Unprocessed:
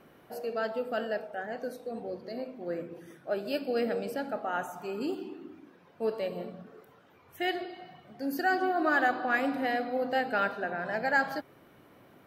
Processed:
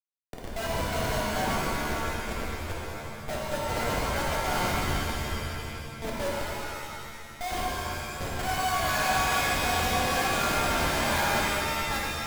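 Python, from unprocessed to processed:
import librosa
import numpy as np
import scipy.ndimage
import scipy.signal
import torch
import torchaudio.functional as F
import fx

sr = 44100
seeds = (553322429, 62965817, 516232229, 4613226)

p1 = scipy.ndimage.median_filter(x, 15, mode='constant')
p2 = scipy.signal.sosfilt(scipy.signal.butter(4, 570.0, 'highpass', fs=sr, output='sos'), p1)
p3 = fx.notch(p2, sr, hz=5200.0, q=16.0)
p4 = p3 + 0.81 * np.pad(p3, (int(1.3 * sr / 1000.0), 0))[:len(p3)]
p5 = p4 + 10.0 ** (-14.0 / 20.0) * np.pad(p4, (int(770 * sr / 1000.0), 0))[:len(p4)]
p6 = 10.0 ** (-29.0 / 20.0) * np.tanh(p5 / 10.0 ** (-29.0 / 20.0))
p7 = p5 + (p6 * 10.0 ** (-8.0 / 20.0))
p8 = fx.high_shelf(p7, sr, hz=2700.0, db=11.0)
p9 = fx.schmitt(p8, sr, flips_db=-29.0)
p10 = fx.rev_shimmer(p9, sr, seeds[0], rt60_s=2.3, semitones=7, shimmer_db=-2, drr_db=-4.0)
y = p10 * 10.0 ** (-4.5 / 20.0)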